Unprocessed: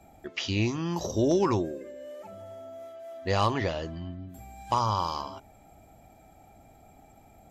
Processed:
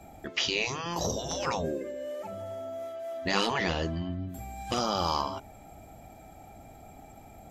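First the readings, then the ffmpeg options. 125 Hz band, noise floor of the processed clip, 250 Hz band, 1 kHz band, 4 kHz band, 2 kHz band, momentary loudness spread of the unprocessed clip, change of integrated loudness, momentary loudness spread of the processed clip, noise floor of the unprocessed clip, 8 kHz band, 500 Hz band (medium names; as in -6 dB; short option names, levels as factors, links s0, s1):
-5.5 dB, -51 dBFS, -4.5 dB, -2.0 dB, +5.0 dB, +4.5 dB, 18 LU, -2.5 dB, 22 LU, -56 dBFS, +5.0 dB, -2.0 dB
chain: -af "acontrast=34,afftfilt=real='re*lt(hypot(re,im),0.282)':imag='im*lt(hypot(re,im),0.282)':win_size=1024:overlap=0.75"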